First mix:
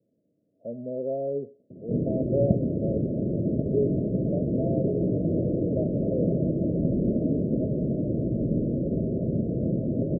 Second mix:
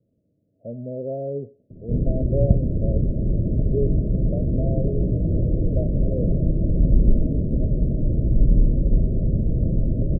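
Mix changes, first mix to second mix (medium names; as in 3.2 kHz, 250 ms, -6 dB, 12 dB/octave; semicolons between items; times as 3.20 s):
background -3.5 dB; master: remove high-pass 210 Hz 12 dB/octave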